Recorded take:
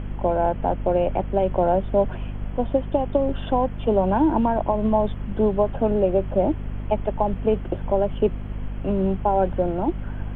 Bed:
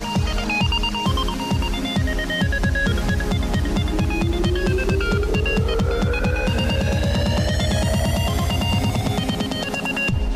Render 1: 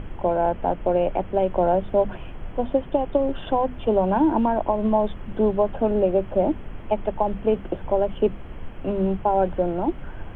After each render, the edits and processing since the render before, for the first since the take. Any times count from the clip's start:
mains-hum notches 50/100/150/200/250 Hz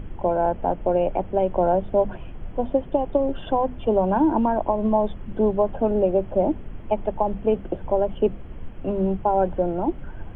broadband denoise 6 dB, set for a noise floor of −38 dBFS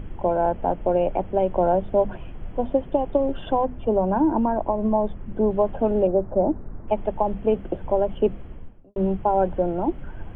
0:03.65–0:05.51: high-frequency loss of the air 400 metres
0:06.07–0:06.88: low-pass filter 1,500 Hz 24 dB per octave
0:08.38–0:08.96: fade out and dull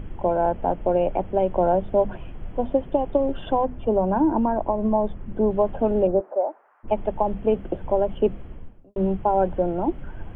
0:06.19–0:06.83: high-pass filter 350 Hz → 1,000 Hz 24 dB per octave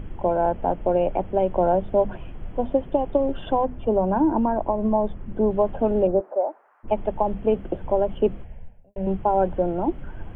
0:08.44–0:09.07: phaser with its sweep stopped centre 1,200 Hz, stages 6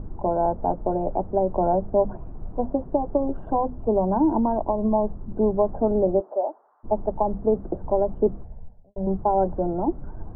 low-pass filter 1,100 Hz 24 dB per octave
notch filter 530 Hz, Q 12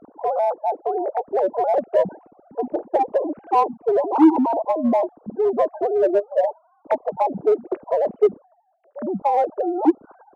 three sine waves on the formant tracks
in parallel at −6.5 dB: hard clipping −19.5 dBFS, distortion −7 dB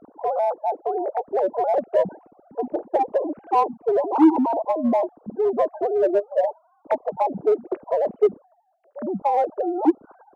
level −1.5 dB

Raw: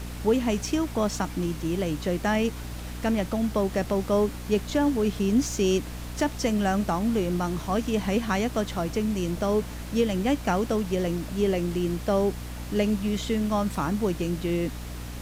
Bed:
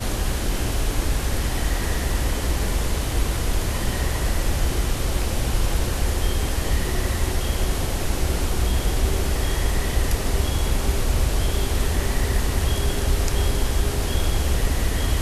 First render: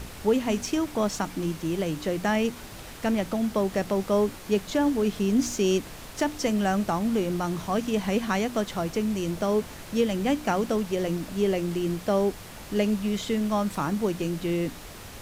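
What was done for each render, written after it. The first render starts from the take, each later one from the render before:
hum removal 60 Hz, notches 5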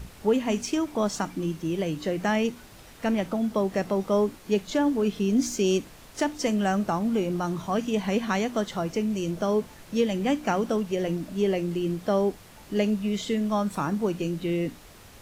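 noise reduction from a noise print 7 dB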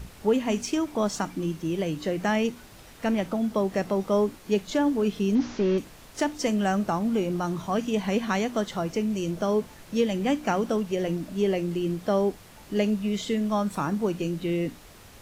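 0:05.35–0:05.78: linear delta modulator 32 kbit/s, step −42.5 dBFS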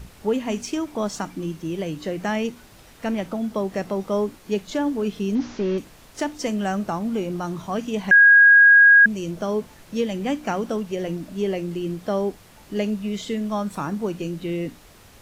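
0:08.11–0:09.06: beep over 1,640 Hz −8 dBFS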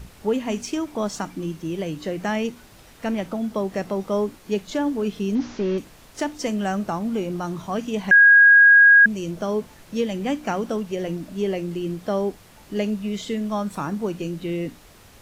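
no processing that can be heard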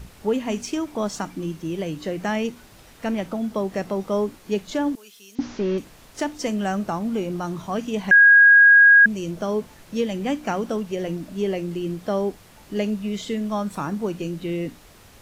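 0:04.95–0:05.39: first difference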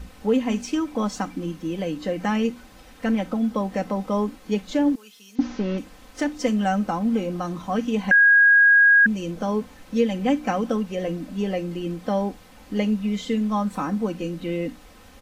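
high-shelf EQ 4,600 Hz −6.5 dB
comb filter 3.9 ms, depth 70%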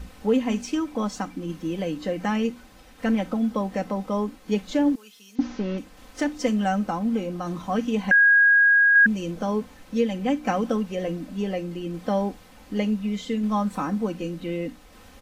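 shaped tremolo saw down 0.67 Hz, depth 30%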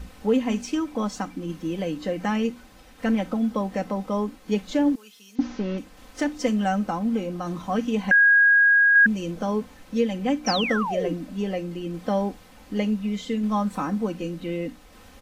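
0:10.46–0:11.14: sound drawn into the spectrogram fall 270–6,100 Hz −28 dBFS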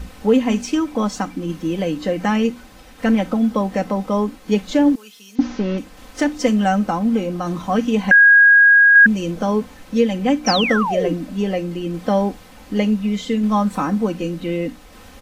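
level +6.5 dB

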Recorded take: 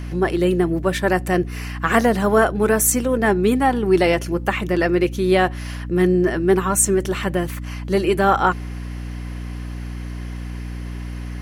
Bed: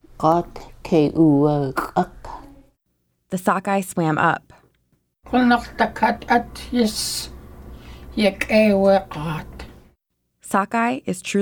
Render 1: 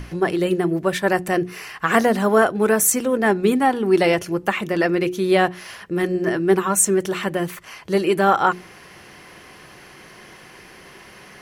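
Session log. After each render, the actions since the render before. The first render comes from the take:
mains-hum notches 60/120/180/240/300/360 Hz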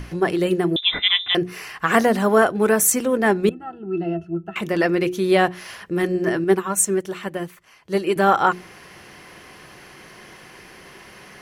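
0:00.76–0:01.35: voice inversion scrambler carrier 3,800 Hz
0:03.49–0:04.56: resonances in every octave E, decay 0.11 s
0:06.44–0:08.16: expander for the loud parts, over −37 dBFS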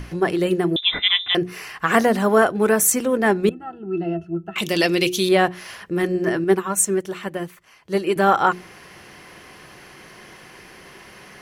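0:04.58–0:05.29: high shelf with overshoot 2,300 Hz +11.5 dB, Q 1.5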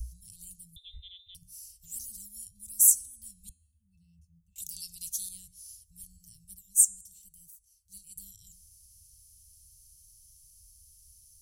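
inverse Chebyshev band-stop filter 340–1,600 Hz, stop band 80 dB
hum removal 317 Hz, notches 35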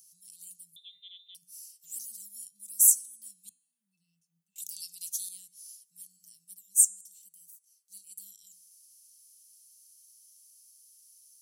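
Bessel high-pass filter 350 Hz, order 8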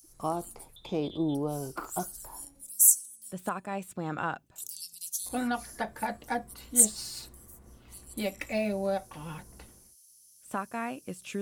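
mix in bed −15 dB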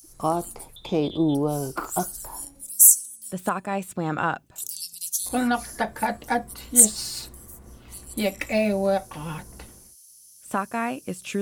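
level +7.5 dB
brickwall limiter −1 dBFS, peak gain reduction 2.5 dB

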